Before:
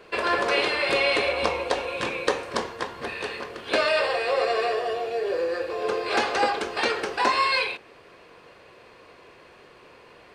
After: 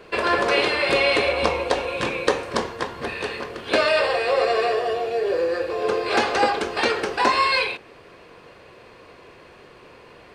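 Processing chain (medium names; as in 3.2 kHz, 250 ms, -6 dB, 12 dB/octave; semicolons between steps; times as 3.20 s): bass shelf 300 Hz +5 dB; trim +2.5 dB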